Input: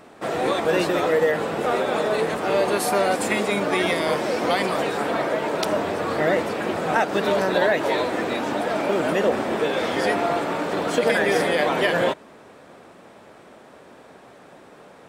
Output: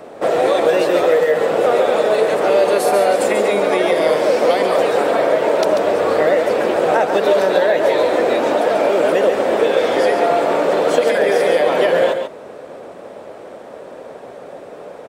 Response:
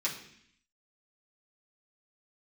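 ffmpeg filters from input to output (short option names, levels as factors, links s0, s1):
-filter_complex "[0:a]equalizer=f=530:w=1.3:g=12,acrossover=split=250|1400[s0][s1][s2];[s0]acompressor=threshold=0.01:ratio=4[s3];[s1]acompressor=threshold=0.126:ratio=4[s4];[s2]acompressor=threshold=0.0355:ratio=4[s5];[s3][s4][s5]amix=inputs=3:normalize=0,asplit=2[s6][s7];[s7]aecho=0:1:140:0.447[s8];[s6][s8]amix=inputs=2:normalize=0,volume=1.58"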